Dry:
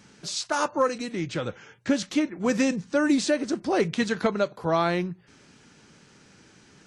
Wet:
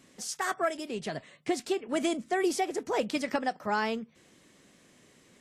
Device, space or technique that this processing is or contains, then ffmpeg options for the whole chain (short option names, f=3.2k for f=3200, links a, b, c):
nightcore: -af "asetrate=56007,aresample=44100,volume=-5.5dB"